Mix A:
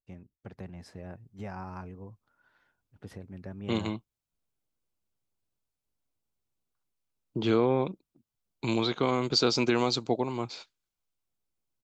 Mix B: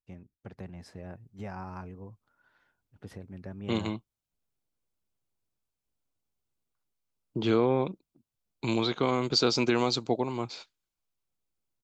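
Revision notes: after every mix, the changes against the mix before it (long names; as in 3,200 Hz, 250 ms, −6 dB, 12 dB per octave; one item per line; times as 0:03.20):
nothing changed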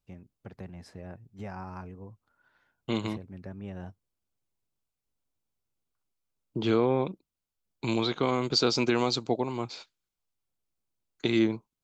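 second voice: entry −0.80 s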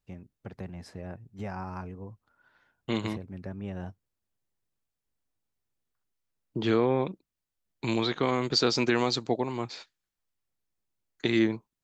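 first voice +3.0 dB
second voice: add parametric band 1,800 Hz +11.5 dB 0.21 octaves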